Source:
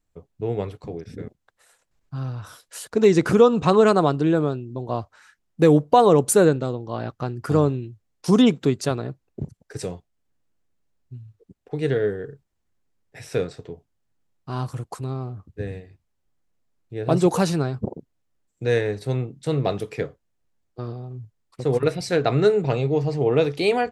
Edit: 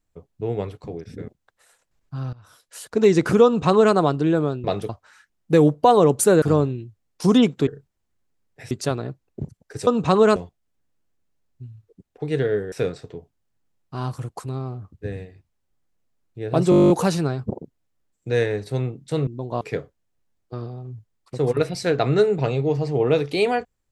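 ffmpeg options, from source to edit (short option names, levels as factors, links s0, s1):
-filter_complex "[0:a]asplit=22[s0][s1][s2][s3][s4][s5][s6][s7][s8][s9][s10][s11][s12][s13][s14][s15][s16][s17][s18][s19][s20][s21];[s0]atrim=end=2.33,asetpts=PTS-STARTPTS,afade=t=out:st=2.326:d=0.004:c=hsin:silence=0.105925[s22];[s1]atrim=start=2.33:end=4.642,asetpts=PTS-STARTPTS,afade=t=in:d=0.62:silence=0.105925[s23];[s2]atrim=start=19.618:end=19.872[s24];[s3]atrim=start=4.978:end=6.512[s25];[s4]atrim=start=7.458:end=8.712[s26];[s5]atrim=start=12.228:end=13.272[s27];[s6]atrim=start=8.708:end=9.872[s28];[s7]atrim=start=3.448:end=3.942[s29];[s8]atrim=start=9.868:end=12.232[s30];[s9]atrim=start=13.268:end=17.272[s31];[s10]atrim=start=17.248:end=17.272[s32];[s11]atrim=start=17.248:end=17.272[s33];[s12]atrim=start=17.248:end=17.272[s34];[s13]atrim=start=17.248:end=17.272[s35];[s14]atrim=start=17.248:end=17.272[s36];[s15]atrim=start=17.248:end=17.272[s37];[s16]atrim=start=17.248:end=17.272[s38];[s17]atrim=start=17.248:end=17.272[s39];[s18]atrim=start=17.248:end=17.272[s40];[s19]atrim=start=17.248:end=19.622[s41];[s20]atrim=start=4.638:end=4.982[s42];[s21]atrim=start=19.868[s43];[s22][s23]concat=n=2:v=0:a=1[s44];[s44][s24]acrossfade=d=0.004:c1=hsin:c2=hsin[s45];[s45][s25]acrossfade=d=0.004:c1=hsin:c2=hsin[s46];[s46][s26]acrossfade=d=0.004:c1=hsin:c2=hsin[s47];[s47][s27]acrossfade=d=0.004:c1=hsin:c2=hsin[s48];[s48][s28]acrossfade=d=0.004:c1=hsin:c2=hsin[s49];[s49][s29]acrossfade=d=0.004:c1=hsin:c2=hsin[s50];[s50][s30]acrossfade=d=0.004:c1=hsin:c2=hsin[s51];[s51][s31]acrossfade=d=0.004:c1=hsin:c2=hsin[s52];[s52][s32]acrossfade=d=0.004:c1=hsin:c2=hsin[s53];[s53][s33]acrossfade=d=0.004:c1=hsin:c2=hsin[s54];[s54][s34]acrossfade=d=0.004:c1=hsin:c2=hsin[s55];[s55][s35]acrossfade=d=0.004:c1=hsin:c2=hsin[s56];[s56][s36]acrossfade=d=0.004:c1=hsin:c2=hsin[s57];[s57][s37]acrossfade=d=0.004:c1=hsin:c2=hsin[s58];[s58][s38]acrossfade=d=0.004:c1=hsin:c2=hsin[s59];[s59][s39]acrossfade=d=0.004:c1=hsin:c2=hsin[s60];[s60][s40]acrossfade=d=0.004:c1=hsin:c2=hsin[s61];[s61][s41]acrossfade=d=0.004:c1=hsin:c2=hsin[s62];[s62][s42]acrossfade=d=0.004:c1=hsin:c2=hsin[s63];[s63][s43]acrossfade=d=0.004:c1=hsin:c2=hsin"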